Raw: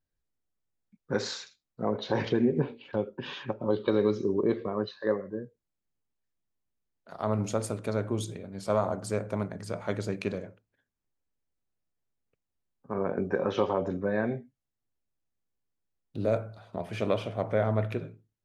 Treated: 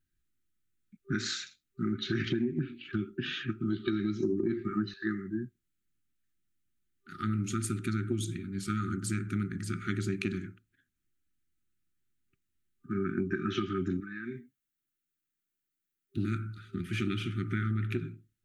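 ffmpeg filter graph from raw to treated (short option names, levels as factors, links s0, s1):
-filter_complex "[0:a]asettb=1/sr,asplit=3[s0][s1][s2];[s0]atrim=end=4.224[s3];[s1]atrim=start=4.22:end=4.94,asetpts=PTS-STARTPTS,afade=t=in:d=0.004:c=qsin,afade=t=out:st=0.716:d=0.004:c=qsin,equalizer=f=3300:w=2:g=-10,acontrast=82,bandreject=f=50:t=h:w=6,bandreject=f=100:t=h:w=6,bandreject=f=150:t=h:w=6,bandreject=f=200:t=h:w=6,bandreject=f=250:t=h:w=6,bandreject=f=300:t=h:w=6,bandreject=f=350:t=h:w=6,bandreject=f=400:t=h:w=6,bandreject=f=450:t=h:w=6[s4];[s2]atrim=start=4.936[s5];[s3][s4]acrossfade=d=0.004:c1=hsin:c2=qsin[s6];[s6][s5]acrossfade=d=0.004:c1=qsin:c2=hsin,asettb=1/sr,asplit=3[s7][s8][s9];[s7]atrim=end=14.004[s10];[s8]atrim=start=14:end=16.17,asetpts=PTS-STARTPTS,afade=t=in:d=0.004:c=qsin,afade=t=out:st=2.166:d=0.004:c=qsin,lowpass=f=1600:p=1,aemphasis=mode=production:type=riaa,acompressor=threshold=0.0158:ratio=4:attack=3.2:release=140:knee=1:detection=peak[s11];[s9]atrim=start=16.166[s12];[s10][s11]acrossfade=d=0.004:c1=hsin:c2=qsin[s13];[s13][s12]acrossfade=d=0.004:c1=qsin:c2=hsin,afftfilt=real='re*(1-between(b*sr/4096,390,1200))':imag='im*(1-between(b*sr/4096,390,1200))':win_size=4096:overlap=0.75,equalizer=f=5000:t=o:w=0.42:g=-5.5,acompressor=threshold=0.0282:ratio=10,volume=1.68"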